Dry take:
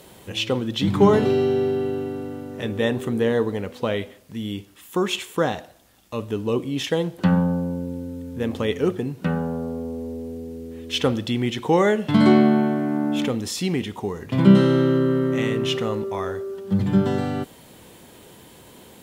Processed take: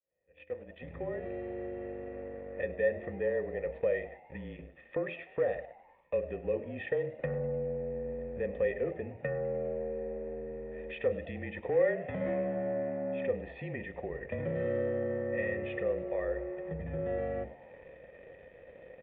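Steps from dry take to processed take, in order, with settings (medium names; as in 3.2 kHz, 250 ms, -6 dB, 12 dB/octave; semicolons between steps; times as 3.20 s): fade-in on the opening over 4.59 s; hum notches 50/100/150/200/250/300/350/400/450/500 Hz; frequency shift -31 Hz; comb 1.6 ms, depth 38%; waveshaping leveller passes 2; compression 2.5:1, threshold -32 dBFS, peak gain reduction 15.5 dB; cascade formant filter e; peaking EQ 63 Hz +8.5 dB 0.21 oct; on a send: frequency-shifting echo 101 ms, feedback 58%, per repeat +81 Hz, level -21 dB; on the sum: trim +6.5 dB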